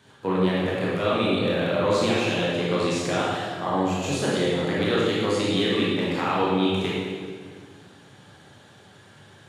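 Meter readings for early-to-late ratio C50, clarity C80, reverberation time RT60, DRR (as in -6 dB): -2.5 dB, 0.5 dB, 1.9 s, -7.0 dB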